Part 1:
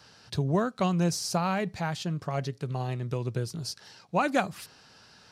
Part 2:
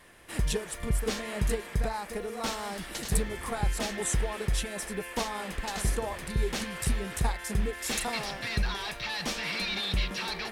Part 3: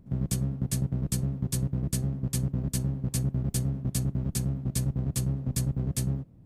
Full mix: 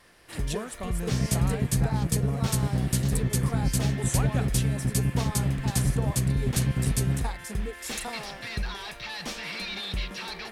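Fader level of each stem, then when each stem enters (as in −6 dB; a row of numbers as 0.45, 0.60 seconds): −10.0, −2.5, +3.0 decibels; 0.00, 0.00, 1.00 seconds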